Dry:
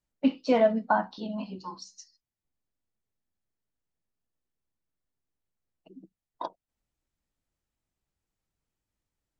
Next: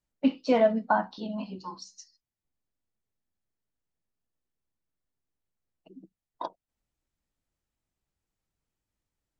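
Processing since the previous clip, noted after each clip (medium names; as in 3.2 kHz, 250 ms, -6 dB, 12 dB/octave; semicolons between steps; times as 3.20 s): no audible change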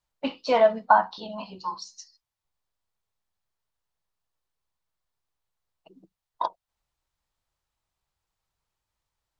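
graphic EQ 250/1000/4000 Hz -10/+8/+5 dB; trim +1.5 dB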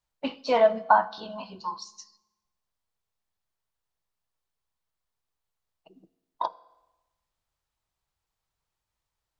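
reverberation RT60 1.1 s, pre-delay 3 ms, DRR 17.5 dB; trim -1.5 dB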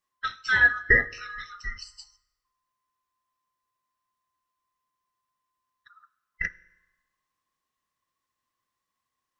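split-band scrambler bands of 1 kHz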